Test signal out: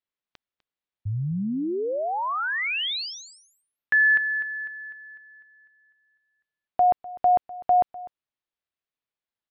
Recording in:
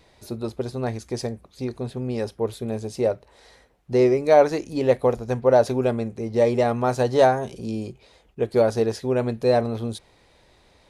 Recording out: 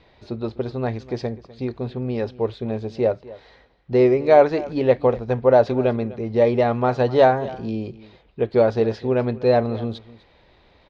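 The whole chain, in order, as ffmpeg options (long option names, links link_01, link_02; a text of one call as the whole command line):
ffmpeg -i in.wav -af "lowpass=frequency=4100:width=0.5412,lowpass=frequency=4100:width=1.3066,aecho=1:1:250:0.112,volume=2dB" out.wav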